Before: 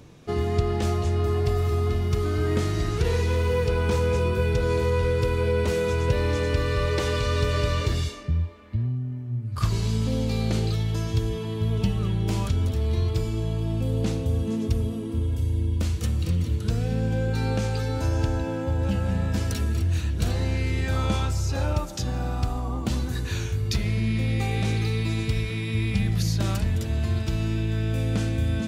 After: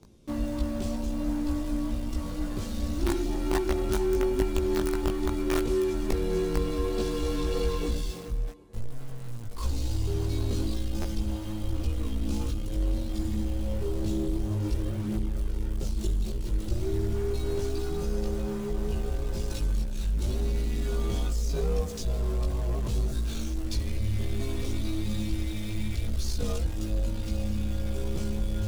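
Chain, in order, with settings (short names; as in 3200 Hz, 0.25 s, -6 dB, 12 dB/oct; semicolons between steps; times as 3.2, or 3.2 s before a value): CVSD 64 kbps; graphic EQ 125/500/1000/2000 Hz -7/+8/-5/-10 dB; frequency shift -120 Hz; in parallel at -7 dB: companded quantiser 2-bit; on the sum: chorus voices 6, 0.55 Hz, delay 18 ms, depth 1.1 ms; on a send: band-limited delay 0.391 s, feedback 78%, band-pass 460 Hz, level -23.5 dB; on the sum: stuck buffer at 11.01, samples 512, times 2; gain -5 dB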